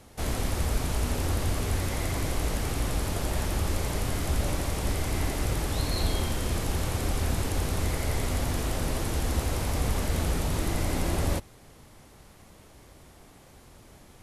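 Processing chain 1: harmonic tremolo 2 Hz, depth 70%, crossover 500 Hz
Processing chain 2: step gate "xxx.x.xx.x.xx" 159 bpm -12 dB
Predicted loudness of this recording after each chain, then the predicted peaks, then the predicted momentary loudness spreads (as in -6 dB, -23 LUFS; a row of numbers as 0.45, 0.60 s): -33.0, -31.0 LUFS; -15.5, -13.5 dBFS; 2, 4 LU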